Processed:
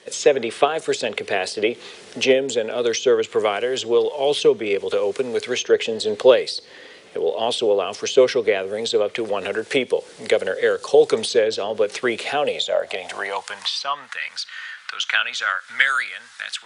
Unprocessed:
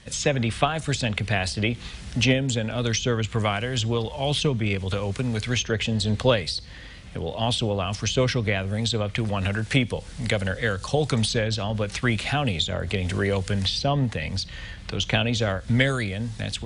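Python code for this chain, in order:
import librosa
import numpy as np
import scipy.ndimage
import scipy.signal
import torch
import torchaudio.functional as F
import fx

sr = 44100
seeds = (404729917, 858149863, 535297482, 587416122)

y = fx.filter_sweep_highpass(x, sr, from_hz=420.0, to_hz=1400.0, start_s=12.22, end_s=14.16, q=4.2)
y = y * librosa.db_to_amplitude(1.0)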